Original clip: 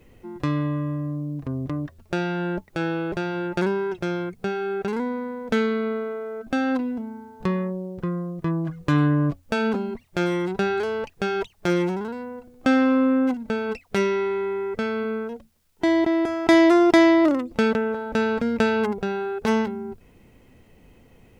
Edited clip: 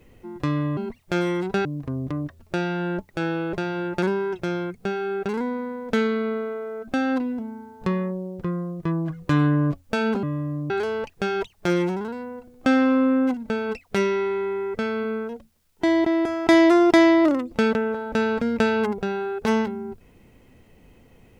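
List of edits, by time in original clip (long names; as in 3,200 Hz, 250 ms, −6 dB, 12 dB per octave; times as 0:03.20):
0:00.77–0:01.24: swap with 0:09.82–0:10.70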